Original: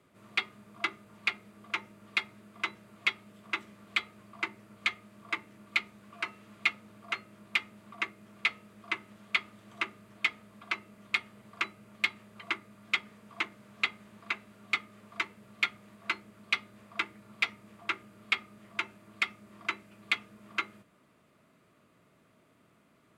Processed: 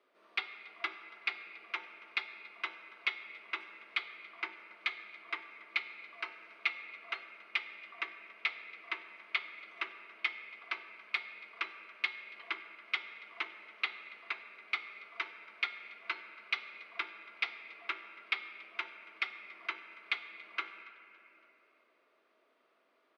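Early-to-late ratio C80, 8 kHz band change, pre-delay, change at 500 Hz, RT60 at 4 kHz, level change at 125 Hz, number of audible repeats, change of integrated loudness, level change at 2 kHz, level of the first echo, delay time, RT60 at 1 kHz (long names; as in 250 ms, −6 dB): 10.5 dB, below −15 dB, 8 ms, −6.0 dB, 1.9 s, below −25 dB, 2, −5.0 dB, −4.5 dB, −22.5 dB, 281 ms, 2.4 s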